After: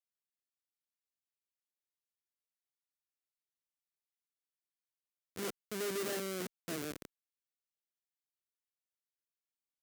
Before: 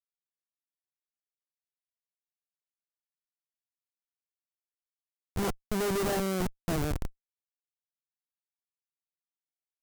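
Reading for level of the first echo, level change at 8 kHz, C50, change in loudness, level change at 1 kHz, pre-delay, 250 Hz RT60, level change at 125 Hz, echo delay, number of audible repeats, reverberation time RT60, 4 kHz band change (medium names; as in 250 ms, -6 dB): no echo, -4.0 dB, no reverb, -8.0 dB, -12.0 dB, no reverb, no reverb, -16.0 dB, no echo, no echo, no reverb, -4.5 dB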